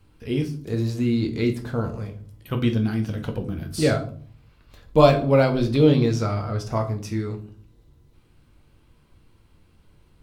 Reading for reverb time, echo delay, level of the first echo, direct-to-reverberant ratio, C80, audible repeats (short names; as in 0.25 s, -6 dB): 0.50 s, none, none, 3.5 dB, 17.0 dB, none